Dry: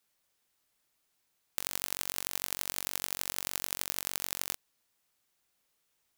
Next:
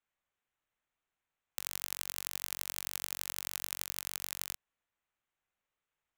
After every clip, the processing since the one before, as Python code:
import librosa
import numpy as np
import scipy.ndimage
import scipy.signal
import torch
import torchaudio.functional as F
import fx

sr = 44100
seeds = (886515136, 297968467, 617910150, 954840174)

y = fx.wiener(x, sr, points=9)
y = fx.peak_eq(y, sr, hz=280.0, db=-6.5, octaves=2.6)
y = F.gain(torch.from_numpy(y), -3.5).numpy()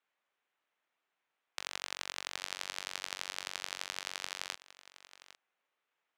y = fx.bandpass_edges(x, sr, low_hz=320.0, high_hz=4400.0)
y = y + 10.0 ** (-17.0 / 20.0) * np.pad(y, (int(805 * sr / 1000.0), 0))[:len(y)]
y = F.gain(torch.from_numpy(y), 6.0).numpy()